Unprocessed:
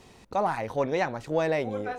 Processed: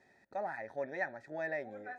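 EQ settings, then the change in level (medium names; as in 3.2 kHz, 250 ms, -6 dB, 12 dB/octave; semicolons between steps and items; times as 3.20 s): vowel filter e; peaking EQ 890 Hz +3.5 dB 0.69 oct; static phaser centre 1.2 kHz, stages 4; +8.0 dB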